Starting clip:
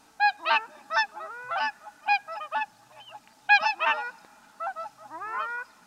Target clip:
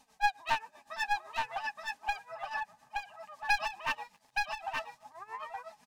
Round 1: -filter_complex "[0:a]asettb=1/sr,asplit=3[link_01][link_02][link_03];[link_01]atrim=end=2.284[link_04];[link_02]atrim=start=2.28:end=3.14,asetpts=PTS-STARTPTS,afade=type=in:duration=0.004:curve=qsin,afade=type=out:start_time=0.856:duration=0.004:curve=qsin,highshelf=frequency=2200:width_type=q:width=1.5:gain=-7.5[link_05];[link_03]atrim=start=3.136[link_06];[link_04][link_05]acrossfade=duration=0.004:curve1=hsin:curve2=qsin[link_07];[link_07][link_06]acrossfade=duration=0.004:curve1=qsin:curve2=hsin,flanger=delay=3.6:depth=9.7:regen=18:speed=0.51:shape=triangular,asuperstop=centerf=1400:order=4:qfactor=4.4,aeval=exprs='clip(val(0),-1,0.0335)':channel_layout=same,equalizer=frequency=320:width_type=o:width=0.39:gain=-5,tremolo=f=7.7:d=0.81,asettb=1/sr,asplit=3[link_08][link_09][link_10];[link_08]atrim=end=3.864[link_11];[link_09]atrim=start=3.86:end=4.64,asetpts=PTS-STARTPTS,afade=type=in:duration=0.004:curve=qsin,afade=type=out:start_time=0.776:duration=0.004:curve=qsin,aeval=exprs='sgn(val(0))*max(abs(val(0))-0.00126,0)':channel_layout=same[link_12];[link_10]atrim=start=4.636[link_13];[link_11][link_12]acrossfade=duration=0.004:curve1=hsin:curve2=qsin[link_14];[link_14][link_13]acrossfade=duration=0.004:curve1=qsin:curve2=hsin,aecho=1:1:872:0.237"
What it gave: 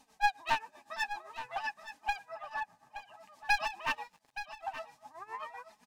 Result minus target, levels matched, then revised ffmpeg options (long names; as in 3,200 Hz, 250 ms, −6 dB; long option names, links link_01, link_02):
echo-to-direct −9 dB; 250 Hz band +3.0 dB
-filter_complex "[0:a]asettb=1/sr,asplit=3[link_01][link_02][link_03];[link_01]atrim=end=2.284[link_04];[link_02]atrim=start=2.28:end=3.14,asetpts=PTS-STARTPTS,afade=type=in:duration=0.004:curve=qsin,afade=type=out:start_time=0.856:duration=0.004:curve=qsin,highshelf=frequency=2200:width_type=q:width=1.5:gain=-7.5[link_05];[link_03]atrim=start=3.136[link_06];[link_04][link_05]acrossfade=duration=0.004:curve1=hsin:curve2=qsin[link_07];[link_07][link_06]acrossfade=duration=0.004:curve1=qsin:curve2=hsin,flanger=delay=3.6:depth=9.7:regen=18:speed=0.51:shape=triangular,asuperstop=centerf=1400:order=4:qfactor=4.4,aeval=exprs='clip(val(0),-1,0.0335)':channel_layout=same,equalizer=frequency=320:width_type=o:width=0.39:gain=-14,tremolo=f=7.7:d=0.81,asettb=1/sr,asplit=3[link_08][link_09][link_10];[link_08]atrim=end=3.864[link_11];[link_09]atrim=start=3.86:end=4.64,asetpts=PTS-STARTPTS,afade=type=in:duration=0.004:curve=qsin,afade=type=out:start_time=0.776:duration=0.004:curve=qsin,aeval=exprs='sgn(val(0))*max(abs(val(0))-0.00126,0)':channel_layout=same[link_12];[link_10]atrim=start=4.636[link_13];[link_11][link_12]acrossfade=duration=0.004:curve1=hsin:curve2=qsin[link_14];[link_14][link_13]acrossfade=duration=0.004:curve1=qsin:curve2=hsin,aecho=1:1:872:0.668"